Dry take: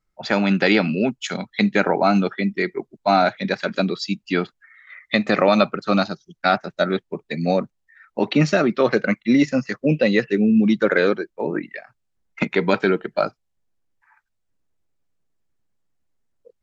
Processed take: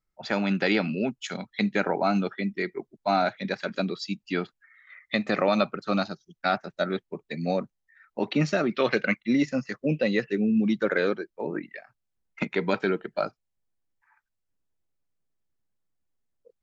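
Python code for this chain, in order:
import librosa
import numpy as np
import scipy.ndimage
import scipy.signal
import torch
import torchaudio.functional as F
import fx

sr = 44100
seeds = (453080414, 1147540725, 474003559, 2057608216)

y = fx.peak_eq(x, sr, hz=2800.0, db=10.5, octaves=1.3, at=(8.71, 9.17))
y = F.gain(torch.from_numpy(y), -7.0).numpy()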